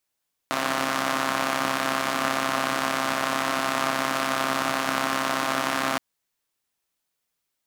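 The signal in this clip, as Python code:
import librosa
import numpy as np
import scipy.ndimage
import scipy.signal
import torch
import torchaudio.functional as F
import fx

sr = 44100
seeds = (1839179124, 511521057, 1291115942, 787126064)

y = fx.engine_four(sr, seeds[0], length_s=5.47, rpm=4000, resonances_hz=(290.0, 680.0, 1100.0))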